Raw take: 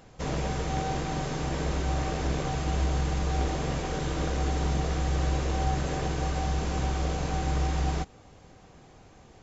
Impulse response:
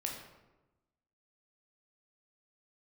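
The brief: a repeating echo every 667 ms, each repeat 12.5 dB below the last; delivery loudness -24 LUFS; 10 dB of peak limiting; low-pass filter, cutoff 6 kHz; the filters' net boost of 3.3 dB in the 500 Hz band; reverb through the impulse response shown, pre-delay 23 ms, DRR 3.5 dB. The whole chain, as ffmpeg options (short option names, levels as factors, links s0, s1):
-filter_complex "[0:a]lowpass=6000,equalizer=f=500:t=o:g=4,alimiter=limit=0.0708:level=0:latency=1,aecho=1:1:667|1334|2001:0.237|0.0569|0.0137,asplit=2[s0][s1];[1:a]atrim=start_sample=2205,adelay=23[s2];[s1][s2]afir=irnorm=-1:irlink=0,volume=0.596[s3];[s0][s3]amix=inputs=2:normalize=0,volume=2.51"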